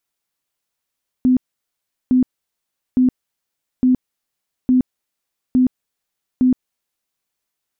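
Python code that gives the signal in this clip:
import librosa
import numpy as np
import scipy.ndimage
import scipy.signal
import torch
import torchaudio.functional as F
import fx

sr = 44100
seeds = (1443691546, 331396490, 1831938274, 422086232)

y = fx.tone_burst(sr, hz=254.0, cycles=30, every_s=0.86, bursts=7, level_db=-10.0)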